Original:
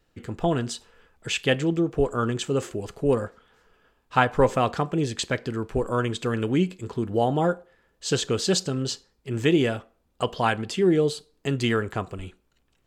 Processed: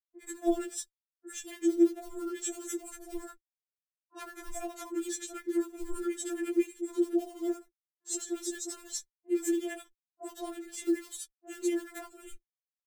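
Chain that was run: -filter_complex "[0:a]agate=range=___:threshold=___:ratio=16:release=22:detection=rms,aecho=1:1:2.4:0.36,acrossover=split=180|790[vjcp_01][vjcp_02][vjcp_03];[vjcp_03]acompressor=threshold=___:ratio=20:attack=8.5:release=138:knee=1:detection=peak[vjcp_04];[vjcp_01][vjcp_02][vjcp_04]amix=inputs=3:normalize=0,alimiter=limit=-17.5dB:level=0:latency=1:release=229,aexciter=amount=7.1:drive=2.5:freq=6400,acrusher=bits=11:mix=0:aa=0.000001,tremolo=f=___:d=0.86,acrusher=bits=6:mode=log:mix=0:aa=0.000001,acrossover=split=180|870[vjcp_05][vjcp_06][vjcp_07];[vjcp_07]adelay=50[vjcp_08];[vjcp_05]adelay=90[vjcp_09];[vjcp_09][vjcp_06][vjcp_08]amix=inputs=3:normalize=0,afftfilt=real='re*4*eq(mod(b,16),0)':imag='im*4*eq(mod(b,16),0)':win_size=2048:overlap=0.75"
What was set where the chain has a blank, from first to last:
-31dB, -47dB, -35dB, 12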